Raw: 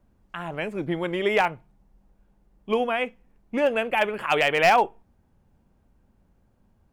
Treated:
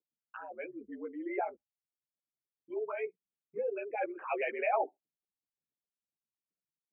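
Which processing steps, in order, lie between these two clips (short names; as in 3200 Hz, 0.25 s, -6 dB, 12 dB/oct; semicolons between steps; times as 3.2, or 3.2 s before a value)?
formant sharpening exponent 3; mistuned SSB -66 Hz 400–2700 Hz; ensemble effect; gain -8 dB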